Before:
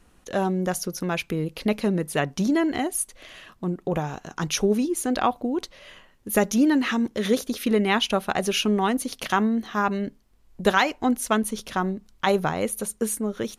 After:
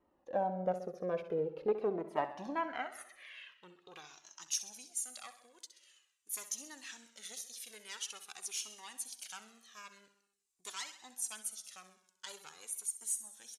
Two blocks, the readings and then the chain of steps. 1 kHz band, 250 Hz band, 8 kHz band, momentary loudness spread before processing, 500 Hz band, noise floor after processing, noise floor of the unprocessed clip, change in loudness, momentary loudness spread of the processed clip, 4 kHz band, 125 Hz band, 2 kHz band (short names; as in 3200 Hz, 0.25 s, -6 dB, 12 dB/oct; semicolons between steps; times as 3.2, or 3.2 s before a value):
-16.0 dB, -25.5 dB, -7.5 dB, 9 LU, -14.0 dB, -78 dBFS, -59 dBFS, -15.0 dB, 18 LU, -16.0 dB, -22.5 dB, -20.0 dB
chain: notch 680 Hz, Q 17; tube stage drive 13 dB, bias 0.7; band-pass sweep 520 Hz -> 7800 Hz, 1.78–4.6; on a send: feedback echo 65 ms, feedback 59%, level -12.5 dB; on the sum: cascading flanger falling 0.46 Hz; gain +5.5 dB